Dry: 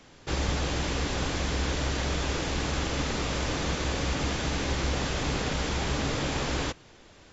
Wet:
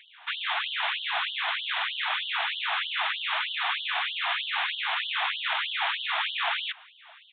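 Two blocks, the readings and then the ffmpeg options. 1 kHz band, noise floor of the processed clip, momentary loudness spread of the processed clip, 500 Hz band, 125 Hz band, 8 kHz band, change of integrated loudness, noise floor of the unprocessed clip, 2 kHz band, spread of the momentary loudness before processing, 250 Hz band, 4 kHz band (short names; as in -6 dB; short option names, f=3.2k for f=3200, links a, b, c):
+3.5 dB, -54 dBFS, 2 LU, -12.5 dB, under -40 dB, n/a, +1.5 dB, -54 dBFS, +6.5 dB, 1 LU, under -40 dB, +6.0 dB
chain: -af "aresample=8000,aresample=44100,afftfilt=real='re*gte(b*sr/1024,630*pow(2900/630,0.5+0.5*sin(2*PI*3.2*pts/sr)))':imag='im*gte(b*sr/1024,630*pow(2900/630,0.5+0.5*sin(2*PI*3.2*pts/sr)))':win_size=1024:overlap=0.75,volume=8.5dB"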